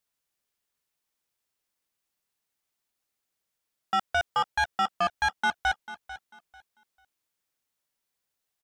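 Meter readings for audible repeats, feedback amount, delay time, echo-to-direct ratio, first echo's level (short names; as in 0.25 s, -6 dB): 2, 24%, 0.444 s, -14.5 dB, -15.0 dB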